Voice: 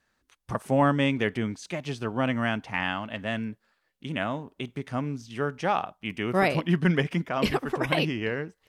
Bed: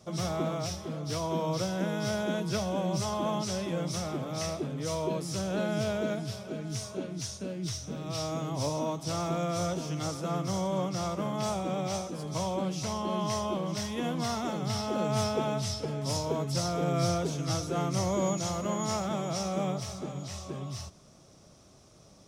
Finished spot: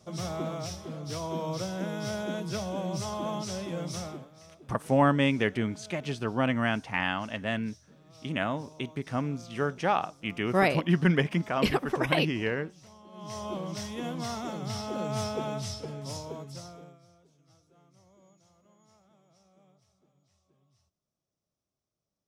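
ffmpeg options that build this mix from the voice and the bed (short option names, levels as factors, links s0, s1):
-filter_complex "[0:a]adelay=4200,volume=0.944[s0];[1:a]volume=5.31,afade=t=out:st=4.02:d=0.28:silence=0.133352,afade=t=in:st=13.12:d=0.42:silence=0.141254,afade=t=out:st=15.66:d=1.33:silence=0.0334965[s1];[s0][s1]amix=inputs=2:normalize=0"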